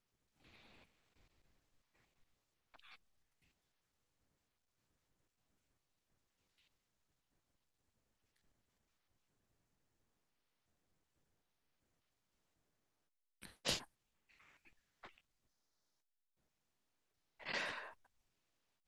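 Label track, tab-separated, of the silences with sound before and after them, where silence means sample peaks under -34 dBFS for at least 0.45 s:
13.770000	17.490000	silence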